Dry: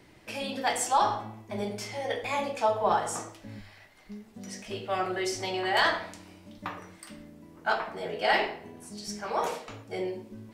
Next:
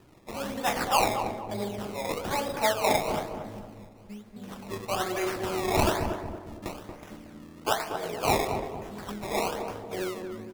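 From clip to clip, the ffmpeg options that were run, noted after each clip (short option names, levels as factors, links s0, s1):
-filter_complex "[0:a]acrusher=samples=20:mix=1:aa=0.000001:lfo=1:lforange=20:lforate=1.1,asplit=2[s0][s1];[s1]adelay=231,lowpass=f=1000:p=1,volume=0.562,asplit=2[s2][s3];[s3]adelay=231,lowpass=f=1000:p=1,volume=0.47,asplit=2[s4][s5];[s5]adelay=231,lowpass=f=1000:p=1,volume=0.47,asplit=2[s6][s7];[s7]adelay=231,lowpass=f=1000:p=1,volume=0.47,asplit=2[s8][s9];[s9]adelay=231,lowpass=f=1000:p=1,volume=0.47,asplit=2[s10][s11];[s11]adelay=231,lowpass=f=1000:p=1,volume=0.47[s12];[s0][s2][s4][s6][s8][s10][s12]amix=inputs=7:normalize=0"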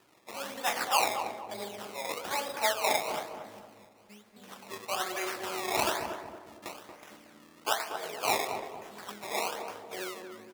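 -af "highpass=f=920:p=1"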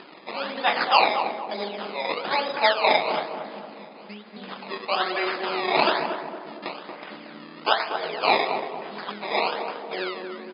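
-filter_complex "[0:a]asplit=2[s0][s1];[s1]acompressor=mode=upward:threshold=0.0178:ratio=2.5,volume=0.841[s2];[s0][s2]amix=inputs=2:normalize=0,afftfilt=real='re*between(b*sr/4096,150,5100)':imag='im*between(b*sr/4096,150,5100)':win_size=4096:overlap=0.75,volume=1.5"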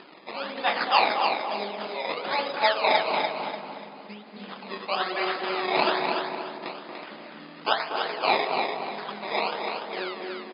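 -af "aecho=1:1:293|586|879|1172:0.531|0.159|0.0478|0.0143,volume=0.708"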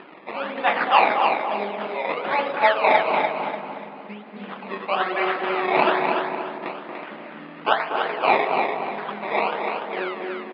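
-af "lowpass=f=2800:w=0.5412,lowpass=f=2800:w=1.3066,volume=1.78"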